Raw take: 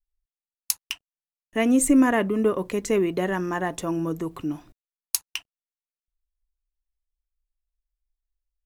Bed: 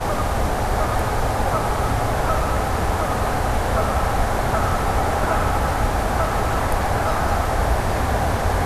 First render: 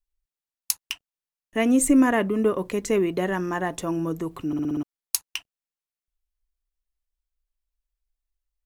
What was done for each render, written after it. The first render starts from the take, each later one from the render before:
0:04.47: stutter in place 0.06 s, 6 plays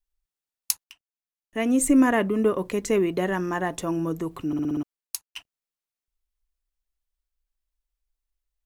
0:00.84–0:02.03: fade in, from −22 dB
0:04.78–0:05.36: fade out, to −22 dB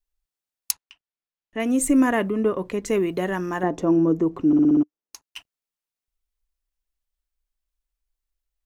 0:00.71–0:01.60: low-pass filter 4,500 Hz
0:02.30–0:02.86: low-pass filter 3,400 Hz 6 dB per octave
0:03.63–0:05.22: drawn EQ curve 110 Hz 0 dB, 300 Hz +10 dB, 4,000 Hz −9 dB, 6,100 Hz −5 dB, 9,200 Hz −18 dB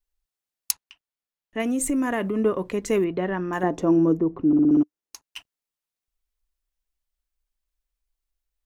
0:01.61–0:02.36: downward compressor 4 to 1, threshold −21 dBFS
0:03.04–0:03.53: high-frequency loss of the air 280 metres
0:04.17–0:04.71: head-to-tape spacing loss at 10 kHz 36 dB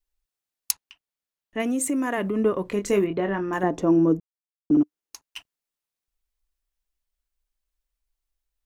0:01.61–0:02.17: high-pass filter 130 Hz → 280 Hz
0:02.69–0:03.58: double-tracking delay 25 ms −8 dB
0:04.20–0:04.70: silence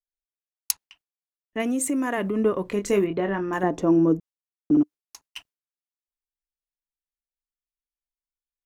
noise gate with hold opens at −45 dBFS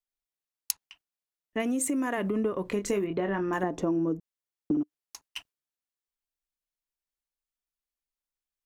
downward compressor, threshold −25 dBFS, peak gain reduction 9.5 dB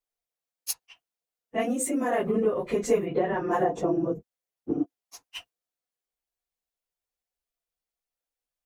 random phases in long frames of 50 ms
hollow resonant body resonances 500/700 Hz, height 10 dB, ringing for 35 ms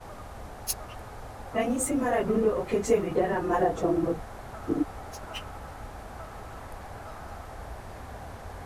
mix in bed −21 dB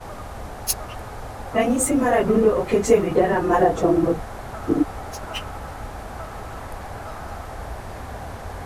level +7.5 dB

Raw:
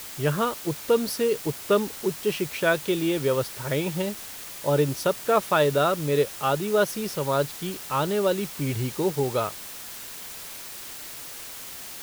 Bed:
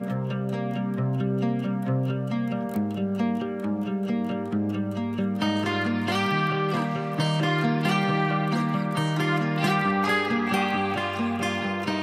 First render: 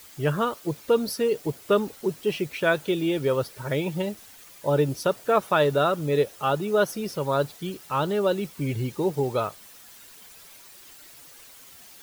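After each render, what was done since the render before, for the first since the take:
broadband denoise 11 dB, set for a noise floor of −39 dBFS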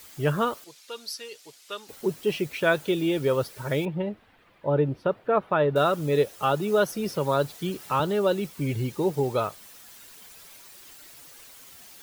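0:00.64–0:01.89: resonant band-pass 4,900 Hz, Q 0.85
0:03.85–0:05.76: high-frequency loss of the air 490 metres
0:06.42–0:08.00: multiband upward and downward compressor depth 40%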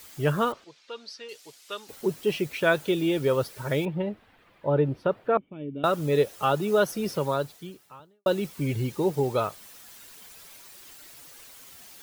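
0:00.52–0:01.29: high-frequency loss of the air 150 metres
0:05.37–0:05.84: formant resonators in series i
0:07.17–0:08.26: fade out quadratic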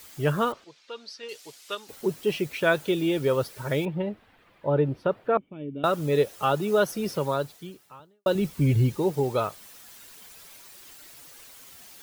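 0:01.23–0:01.75: clip gain +3 dB
0:08.35–0:08.97: low-shelf EQ 180 Hz +12 dB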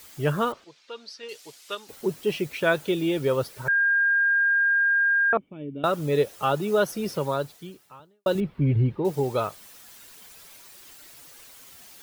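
0:03.68–0:05.33: beep over 1,610 Hz −18 dBFS
0:08.40–0:09.05: high-frequency loss of the air 450 metres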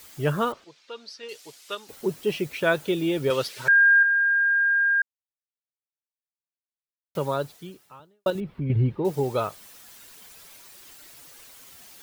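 0:03.30–0:04.03: meter weighting curve D
0:05.02–0:07.15: silence
0:08.30–0:08.70: downward compressor 2 to 1, threshold −30 dBFS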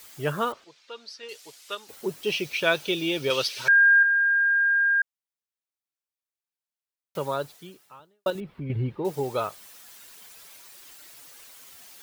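0:02.23–0:04.01: gain on a spectral selection 2,200–6,500 Hz +7 dB
low-shelf EQ 350 Hz −7 dB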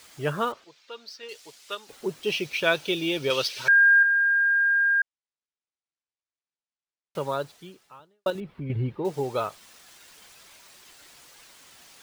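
running median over 3 samples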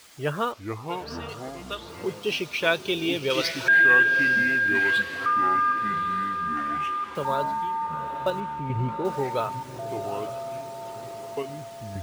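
feedback delay with all-pass diffusion 862 ms, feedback 45%, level −11.5 dB
delay with pitch and tempo change per echo 344 ms, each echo −5 semitones, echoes 3, each echo −6 dB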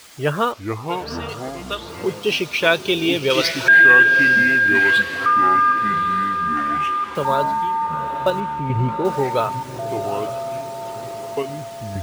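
level +7 dB
brickwall limiter −2 dBFS, peak gain reduction 1 dB

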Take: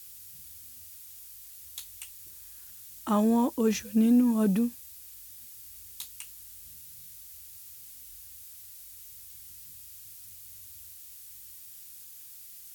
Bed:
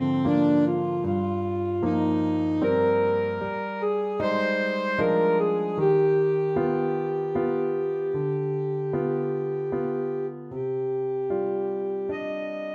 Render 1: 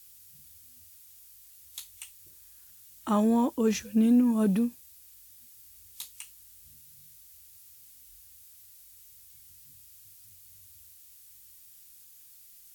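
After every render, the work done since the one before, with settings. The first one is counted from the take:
noise reduction from a noise print 6 dB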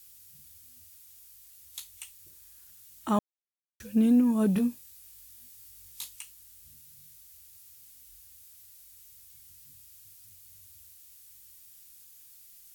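0:03.19–0:03.80: silence
0:04.54–0:06.16: double-tracking delay 20 ms −3.5 dB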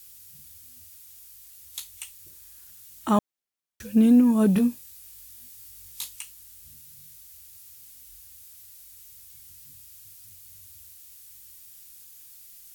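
level +5 dB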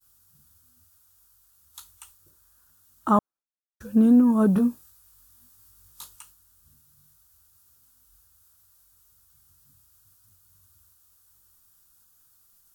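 downward expander −43 dBFS
high shelf with overshoot 1,700 Hz −7.5 dB, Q 3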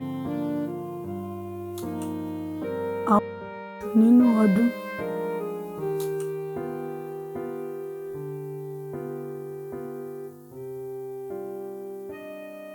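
mix in bed −8 dB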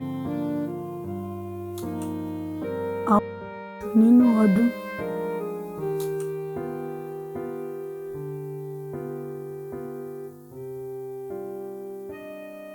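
low-shelf EQ 92 Hz +6 dB
notch filter 2,900 Hz, Q 19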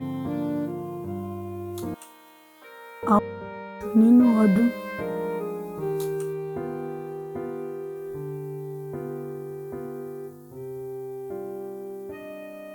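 0:01.94–0:03.03: high-pass filter 1,400 Hz
0:06.33–0:07.96: high-shelf EQ 11,000 Hz −7 dB

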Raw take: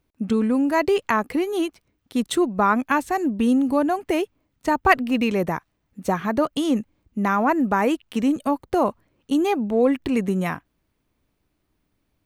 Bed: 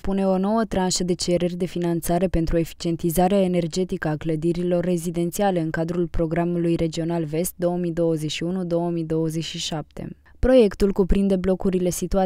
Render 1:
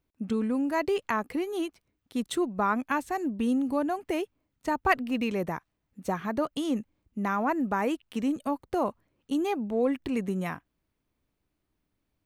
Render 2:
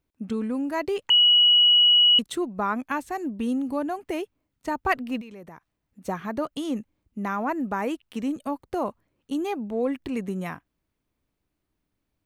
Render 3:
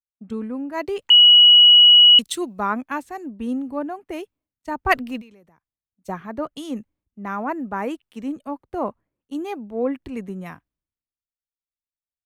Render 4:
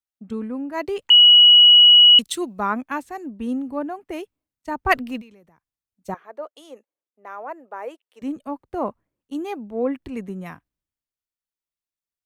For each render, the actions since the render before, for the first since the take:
level −7.5 dB
0:01.10–0:02.19: beep over 2,920 Hz −13.5 dBFS; 0:05.21–0:06.05: downward compressor 4 to 1, threshold −42 dBFS
multiband upward and downward expander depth 100%
0:06.14–0:08.22: four-pole ladder high-pass 420 Hz, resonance 45%

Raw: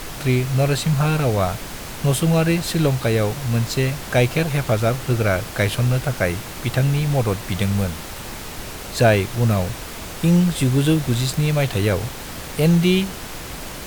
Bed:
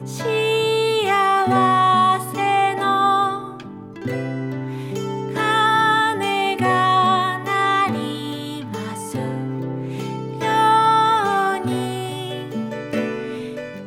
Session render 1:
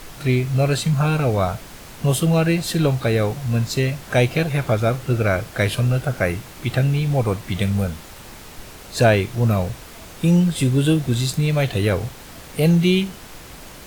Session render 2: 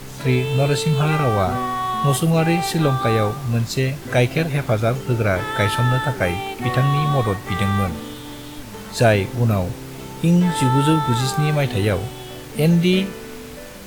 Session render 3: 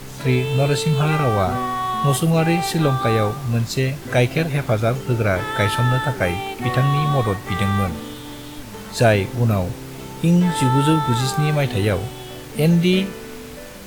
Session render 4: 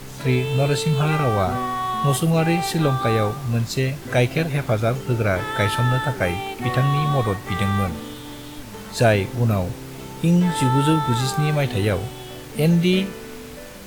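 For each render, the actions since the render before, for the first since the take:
noise reduction from a noise print 7 dB
mix in bed −8 dB
no processing that can be heard
level −1.5 dB

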